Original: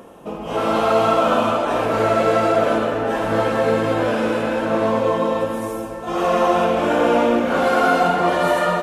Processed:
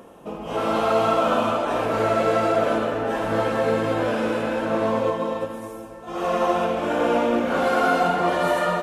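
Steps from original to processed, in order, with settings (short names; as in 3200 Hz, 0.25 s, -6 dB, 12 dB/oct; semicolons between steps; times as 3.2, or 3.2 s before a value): 5.1–7.33 upward expander 1.5:1, over -26 dBFS; gain -3.5 dB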